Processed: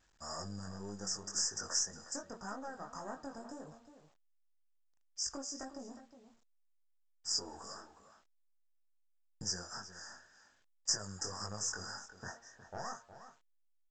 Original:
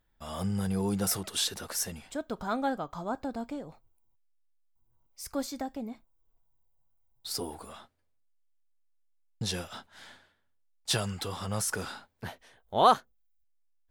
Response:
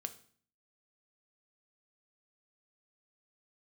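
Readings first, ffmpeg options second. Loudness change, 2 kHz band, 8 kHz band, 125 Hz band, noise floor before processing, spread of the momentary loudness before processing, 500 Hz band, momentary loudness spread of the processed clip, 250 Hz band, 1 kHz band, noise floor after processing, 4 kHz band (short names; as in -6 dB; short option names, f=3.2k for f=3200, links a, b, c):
-8.0 dB, -8.0 dB, -1.0 dB, -13.5 dB, -72 dBFS, 16 LU, -14.0 dB, 17 LU, -13.5 dB, -16.0 dB, -72 dBFS, -4.5 dB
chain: -filter_complex "[0:a]aeval=exprs='(tanh(15.8*val(0)+0.7)-tanh(0.7))/15.8':c=same,afftfilt=real='re*(1-between(b*sr/4096,1900,4800))':imag='im*(1-between(b*sr/4096,1900,4800))':win_size=4096:overlap=0.75,lowshelf=f=160:g=-3,acompressor=threshold=-40dB:ratio=10,bandreject=f=115.1:t=h:w=4,bandreject=f=230.2:t=h:w=4,bandreject=f=345.3:t=h:w=4,bandreject=f=460.4:t=h:w=4,bandreject=f=575.5:t=h:w=4,bandreject=f=690.6:t=h:w=4,bandreject=f=805.7:t=h:w=4,bandreject=f=920.8:t=h:w=4,bandreject=f=1.0359k:t=h:w=4,bandreject=f=1.151k:t=h:w=4,bandreject=f=1.2661k:t=h:w=4,bandreject=f=1.3812k:t=h:w=4,bandreject=f=1.4963k:t=h:w=4,bandreject=f=1.6114k:t=h:w=4,bandreject=f=1.7265k:t=h:w=4,flanger=delay=19:depth=3.5:speed=1.9,crystalizer=i=7:c=0,asplit=2[a][b];[b]adelay=361.5,volume=-12dB,highshelf=f=4k:g=-8.13[c];[a][c]amix=inputs=2:normalize=0,volume=1dB" -ar 16000 -c:a pcm_alaw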